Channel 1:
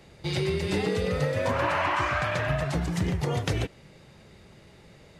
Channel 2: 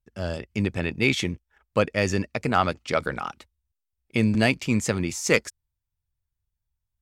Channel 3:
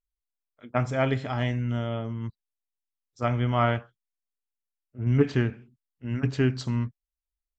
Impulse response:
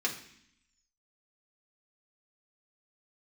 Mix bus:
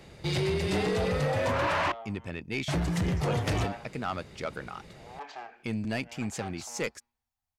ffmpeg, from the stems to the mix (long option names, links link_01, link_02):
-filter_complex "[0:a]volume=2dB,asplit=3[link_01][link_02][link_03];[link_01]atrim=end=1.92,asetpts=PTS-STARTPTS,afade=type=out:start_time=1.916:duration=0.004:curve=hsin[link_04];[link_02]atrim=start=1.92:end=2.68,asetpts=PTS-STARTPTS,volume=0[link_05];[link_03]atrim=start=2.68,asetpts=PTS-STARTPTS,afade=type=in:duration=0.004:curve=hsin[link_06];[link_04][link_05][link_06]concat=n=3:v=0:a=1[link_07];[1:a]adelay=1500,volume=-9.5dB[link_08];[2:a]asoftclip=type=tanh:threshold=-27dB,alimiter=level_in=13.5dB:limit=-24dB:level=0:latency=1:release=255,volume=-13.5dB,highpass=frequency=770:width_type=q:width=5.7,volume=-1dB,asplit=2[link_09][link_10];[link_10]volume=-12dB[link_11];[3:a]atrim=start_sample=2205[link_12];[link_11][link_12]afir=irnorm=-1:irlink=0[link_13];[link_07][link_08][link_09][link_13]amix=inputs=4:normalize=0,asoftclip=type=tanh:threshold=-22.5dB"